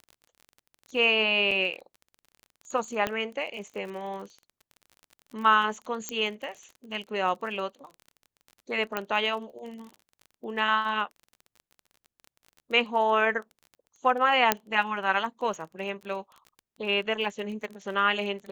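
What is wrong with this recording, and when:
surface crackle 28 per second −37 dBFS
0:01.51: drop-out 4.3 ms
0:03.07: click −13 dBFS
0:06.09: click −15 dBFS
0:08.97: click −14 dBFS
0:14.52: click −4 dBFS

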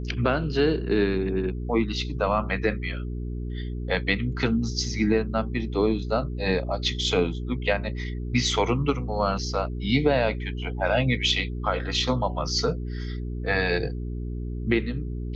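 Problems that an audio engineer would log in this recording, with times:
mains hum 60 Hz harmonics 7 −31 dBFS

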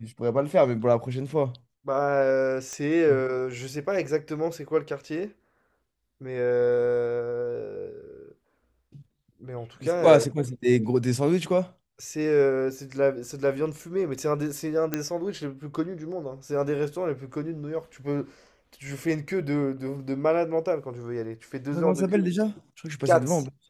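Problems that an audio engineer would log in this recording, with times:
0:02.73: click −21 dBFS
0:14.94: click −11 dBFS

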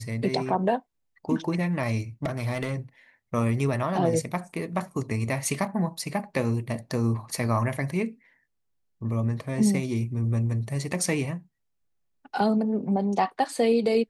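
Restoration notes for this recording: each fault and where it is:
0:02.23–0:02.75: clipping −23 dBFS

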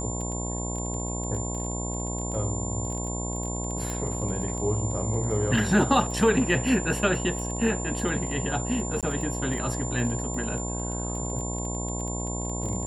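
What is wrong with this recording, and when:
mains buzz 60 Hz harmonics 18 −32 dBFS
surface crackle 14 per second −32 dBFS
whistle 7,200 Hz −34 dBFS
0:03.90: click
0:09.01–0:09.03: drop-out 17 ms

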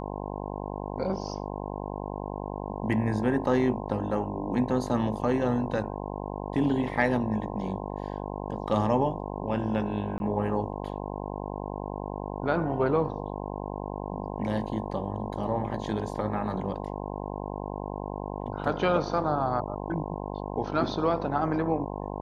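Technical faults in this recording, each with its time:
mains buzz 50 Hz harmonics 21 −35 dBFS
0:10.18–0:10.20: drop-out 21 ms

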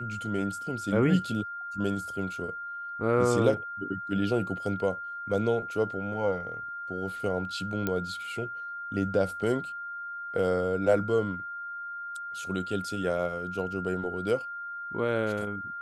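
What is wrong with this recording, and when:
whistle 1,400 Hz −35 dBFS
0:07.87: click −15 dBFS

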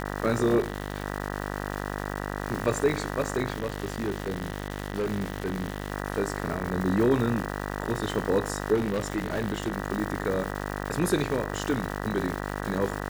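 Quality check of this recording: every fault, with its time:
mains buzz 50 Hz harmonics 39 −33 dBFS
surface crackle 460 per second −32 dBFS
0:00.59–0:01.04: clipping −23 dBFS
0:03.54–0:05.92: clipping −24 dBFS
0:08.74–0:09.72: clipping −22.5 dBFS

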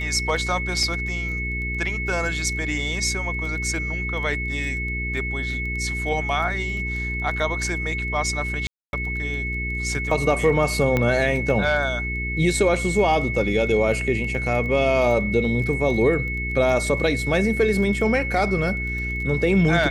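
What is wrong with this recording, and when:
surface crackle 11 per second −30 dBFS
mains hum 60 Hz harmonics 7 −29 dBFS
whistle 2,200 Hz −27 dBFS
0:00.83: drop-out 2.2 ms
0:08.67–0:08.93: drop-out 261 ms
0:10.97: click −9 dBFS

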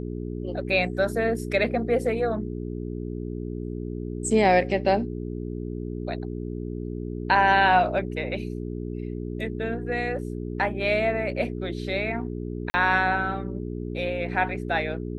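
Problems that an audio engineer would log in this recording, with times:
mains hum 60 Hz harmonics 7 −32 dBFS
0:12.70–0:12.74: drop-out 40 ms

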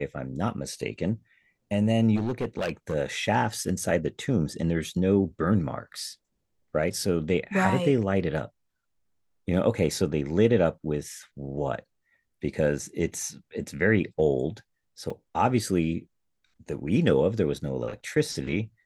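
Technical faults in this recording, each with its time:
0:02.15–0:02.95: clipping −23.5 dBFS
0:15.10: drop-out 3.6 ms

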